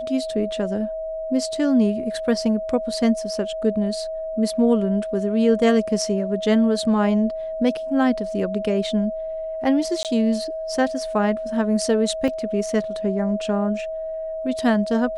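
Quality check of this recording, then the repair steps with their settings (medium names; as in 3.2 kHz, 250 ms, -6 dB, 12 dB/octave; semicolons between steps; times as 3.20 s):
whine 640 Hz -26 dBFS
10.03–10.05 s: dropout 18 ms
12.28 s: dropout 2.4 ms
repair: band-stop 640 Hz, Q 30; interpolate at 10.03 s, 18 ms; interpolate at 12.28 s, 2.4 ms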